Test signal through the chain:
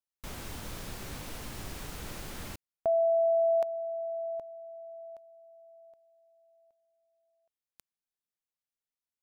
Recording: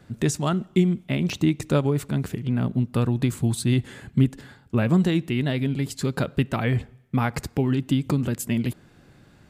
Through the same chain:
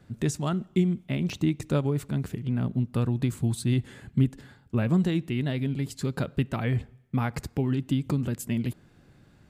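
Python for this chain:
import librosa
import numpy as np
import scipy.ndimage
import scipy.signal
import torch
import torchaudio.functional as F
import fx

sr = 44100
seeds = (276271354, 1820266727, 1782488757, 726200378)

y = fx.low_shelf(x, sr, hz=230.0, db=4.0)
y = F.gain(torch.from_numpy(y), -6.0).numpy()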